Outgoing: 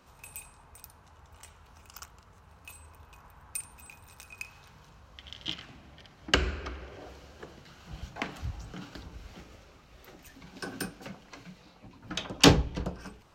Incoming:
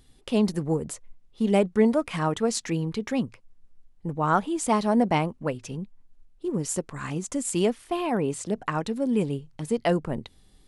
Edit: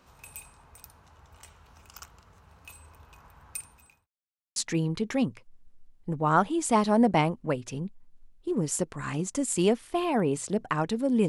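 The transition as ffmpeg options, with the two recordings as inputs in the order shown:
-filter_complex "[0:a]apad=whole_dur=11.28,atrim=end=11.28,asplit=2[a][b];[a]atrim=end=4.07,asetpts=PTS-STARTPTS,afade=t=out:st=3.52:d=0.55[c];[b]atrim=start=4.07:end=4.56,asetpts=PTS-STARTPTS,volume=0[d];[1:a]atrim=start=2.53:end=9.25,asetpts=PTS-STARTPTS,afade=t=in:d=0.004:c=hsin[e];[c][d][e]concat=n=3:v=0:a=1"

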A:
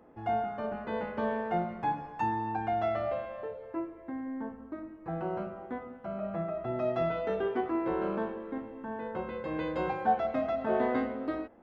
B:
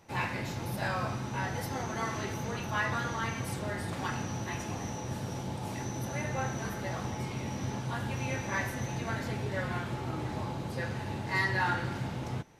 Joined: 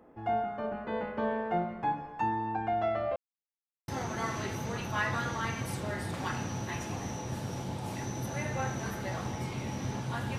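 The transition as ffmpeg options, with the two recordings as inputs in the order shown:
-filter_complex "[0:a]apad=whole_dur=10.38,atrim=end=10.38,asplit=2[a][b];[a]atrim=end=3.16,asetpts=PTS-STARTPTS,afade=t=out:st=3.156:d=0.004:c=hsin[c];[b]atrim=start=3.16:end=3.88,asetpts=PTS-STARTPTS,volume=0[d];[1:a]atrim=start=1.67:end=8.17,asetpts=PTS-STARTPTS,afade=t=in:d=0.004:c=hsin[e];[c][d][e]concat=n=3:v=0:a=1"

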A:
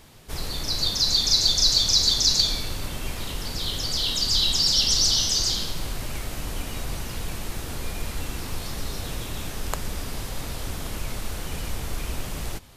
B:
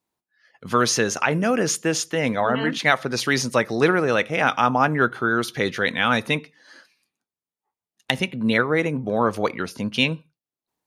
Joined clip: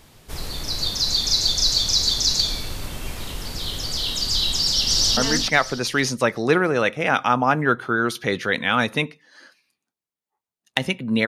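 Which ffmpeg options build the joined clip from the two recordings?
-filter_complex "[0:a]apad=whole_dur=11.27,atrim=end=11.27,atrim=end=5.172[a];[1:a]atrim=start=2.498:end=8.6[b];[a][b]acrossfade=d=0.004:c1=hsin:c2=hsin,asplit=2[c][d];[d]afade=t=in:st=4.56:d=0.01,afade=t=out:st=5.17:d=0.01,aecho=0:1:310|620|930|1240:0.668344|0.167086|0.0417715|0.0104429[e];[c][e]amix=inputs=2:normalize=0"

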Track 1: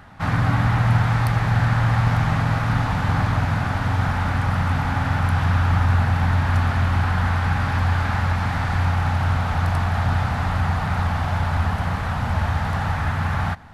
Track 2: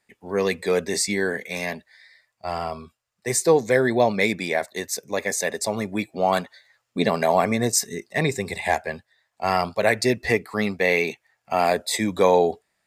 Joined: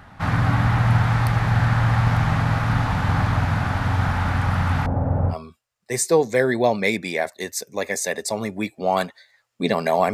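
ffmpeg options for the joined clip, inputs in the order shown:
-filter_complex "[0:a]asettb=1/sr,asplit=3[a][b][c];[a]atrim=end=4.864[d];[b]atrim=start=4.86:end=5.35,asetpts=PTS-STARTPTS,afade=t=in:d=0.004:c=qsin,afade=t=out:st=0.486:d=0.004:c=qsin,lowpass=f=530:t=q:w=3.3[e];[c]atrim=start=5.346[f];[d][e]acrossfade=d=0.004:c1=hsin:c2=qsin[g];[g][f]acrossfade=d=0.004:c1=qsin:c2=hsin,apad=whole_dur=10.13,atrim=end=10.13,atrim=end=5.35,asetpts=PTS-STARTPTS[h];[1:a]atrim=start=2.65:end=7.49,asetpts=PTS-STARTPTS[i];[h][i]acrossfade=d=0.06:c1=tri:c2=tri"

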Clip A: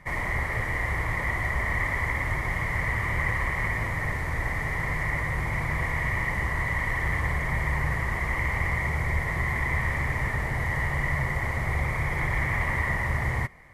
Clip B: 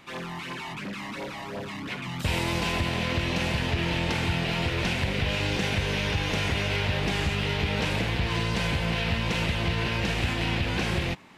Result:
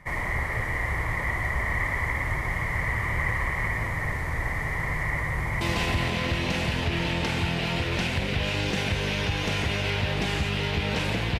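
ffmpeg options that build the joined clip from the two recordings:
-filter_complex "[0:a]apad=whole_dur=11.39,atrim=end=11.39,atrim=end=5.612[a];[1:a]atrim=start=2.468:end=8.25[b];[a][b]acrossfade=d=0.004:c1=hsin:c2=hsin,asplit=2[c][d];[d]afade=t=in:st=5.16:d=0.01,afade=t=out:st=5.61:d=0.01,aecho=0:1:480|960|1440|1920|2400|2880|3360|3840|4320|4800:0.630957|0.410122|0.266579|0.173277|0.11263|0.0732094|0.0475861|0.030931|0.0201051|0.0130683[e];[c][e]amix=inputs=2:normalize=0"

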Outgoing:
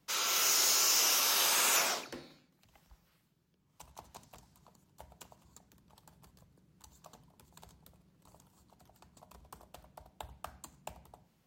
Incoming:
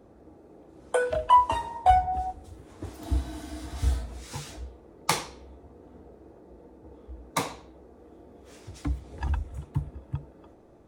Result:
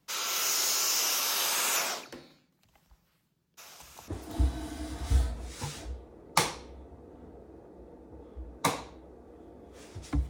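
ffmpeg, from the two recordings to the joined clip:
-filter_complex "[0:a]asplit=3[a][b][c];[a]afade=t=out:st=3.57:d=0.02[d];[b]aecho=1:1:455|910|1365|1820|2275|2730|3185:0.398|0.235|0.139|0.0818|0.0482|0.0285|0.0168,afade=t=in:st=3.57:d=0.02,afade=t=out:st=4.08:d=0.02[e];[c]afade=t=in:st=4.08:d=0.02[f];[d][e][f]amix=inputs=3:normalize=0,apad=whole_dur=10.29,atrim=end=10.29,atrim=end=4.082[g];[1:a]atrim=start=2.798:end=9.01[h];[g][h]acrossfade=d=0.004:c1=hsin:c2=hsin"

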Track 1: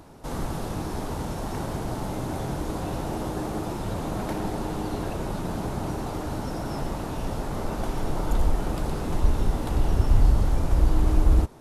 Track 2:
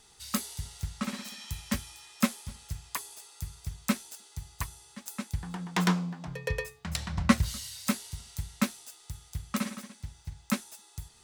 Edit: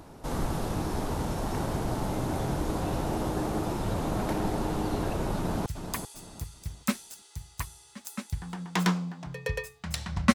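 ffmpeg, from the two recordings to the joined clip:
-filter_complex "[0:a]apad=whole_dur=10.34,atrim=end=10.34,atrim=end=5.662[a];[1:a]atrim=start=2.668:end=7.35[b];[a][b]acrossfade=d=0.004:c1=hsin:c2=hsin,asplit=2[c][d];[d]afade=t=in:st=5.36:d=0.01,afade=t=out:st=5.66:d=0.01,aecho=0:1:390|780|1170|1560:0.398107|0.119432|0.0358296|0.0107489[e];[c][e]amix=inputs=2:normalize=0"

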